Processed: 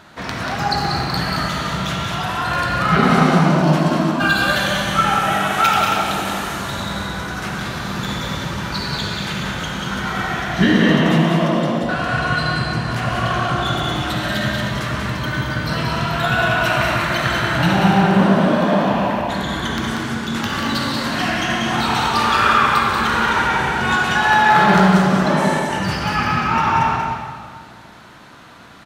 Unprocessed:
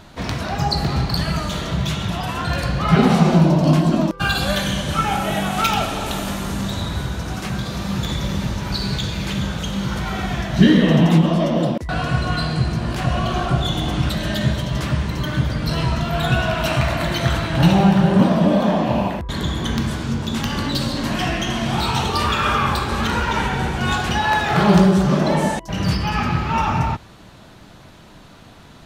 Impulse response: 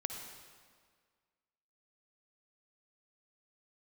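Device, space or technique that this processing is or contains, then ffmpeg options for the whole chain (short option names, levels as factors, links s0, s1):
stadium PA: -filter_complex "[0:a]highpass=f=160:p=1,equalizer=f=1500:t=o:w=1.1:g=7,aecho=1:1:186.6|221.6:0.562|0.355[s0];[1:a]atrim=start_sample=2205[s1];[s0][s1]afir=irnorm=-1:irlink=0,volume=0.891"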